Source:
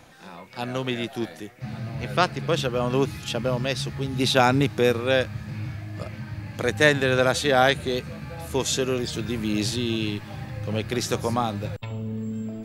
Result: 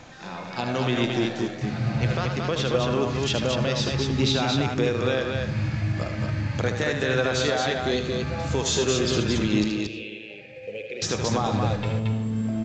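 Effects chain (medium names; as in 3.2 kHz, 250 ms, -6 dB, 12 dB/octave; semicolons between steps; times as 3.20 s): compression, threshold -25 dBFS, peak gain reduction 13.5 dB; peak limiter -19.5 dBFS, peak gain reduction 9 dB; 9.64–11.02 s: two resonant band-passes 1.1 kHz, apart 2.3 oct; multi-tap echo 76/226 ms -7/-3.5 dB; reverberation RT60 0.80 s, pre-delay 73 ms, DRR 13 dB; trim +5 dB; µ-law 128 kbps 16 kHz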